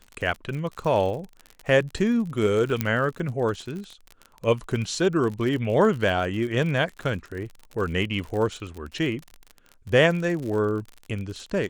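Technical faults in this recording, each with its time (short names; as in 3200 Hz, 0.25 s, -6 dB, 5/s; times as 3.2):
crackle 46/s -31 dBFS
2.81 pop -8 dBFS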